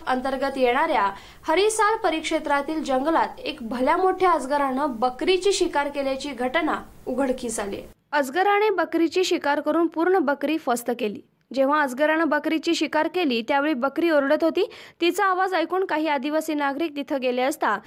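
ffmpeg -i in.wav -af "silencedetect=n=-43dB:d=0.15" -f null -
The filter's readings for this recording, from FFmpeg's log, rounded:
silence_start: 7.93
silence_end: 8.12 | silence_duration: 0.20
silence_start: 11.20
silence_end: 11.51 | silence_duration: 0.31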